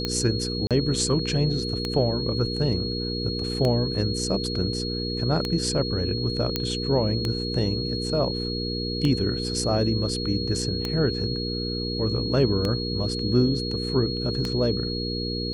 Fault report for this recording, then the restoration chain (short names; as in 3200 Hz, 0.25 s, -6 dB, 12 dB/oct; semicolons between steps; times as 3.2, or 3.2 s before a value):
hum 60 Hz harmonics 8 -30 dBFS
tick 33 1/3 rpm -12 dBFS
tone 4300 Hz -31 dBFS
0.67–0.71 gap 37 ms
6.56 pop -9 dBFS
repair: de-click; notch 4300 Hz, Q 30; de-hum 60 Hz, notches 8; interpolate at 0.67, 37 ms